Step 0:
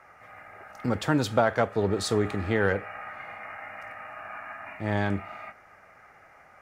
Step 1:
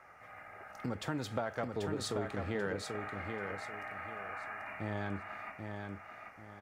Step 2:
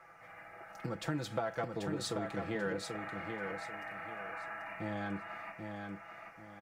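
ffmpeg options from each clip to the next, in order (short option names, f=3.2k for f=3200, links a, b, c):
-af "acompressor=threshold=-33dB:ratio=2.5,aecho=1:1:787|1574|2361|3148:0.562|0.174|0.054|0.0168,volume=-4dB"
-af "aecho=1:1:6:0.7,volume=-1.5dB"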